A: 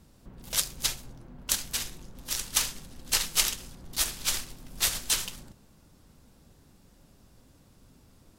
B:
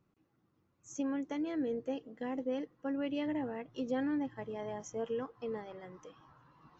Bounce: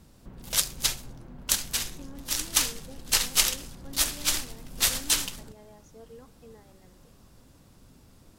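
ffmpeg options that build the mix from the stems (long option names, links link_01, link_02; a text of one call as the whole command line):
ffmpeg -i stem1.wav -i stem2.wav -filter_complex "[0:a]volume=2.5dB[link_01];[1:a]adelay=1000,volume=-12dB[link_02];[link_01][link_02]amix=inputs=2:normalize=0" out.wav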